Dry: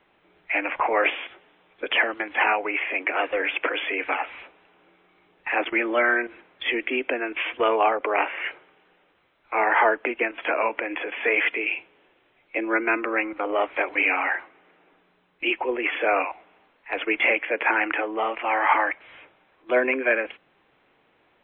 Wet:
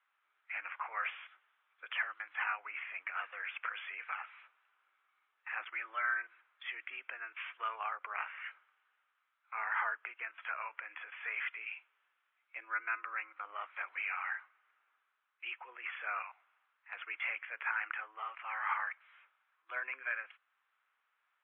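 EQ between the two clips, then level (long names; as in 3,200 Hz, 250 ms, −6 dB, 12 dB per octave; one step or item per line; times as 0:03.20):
resonant band-pass 1,300 Hz, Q 3.2
first difference
+5.5 dB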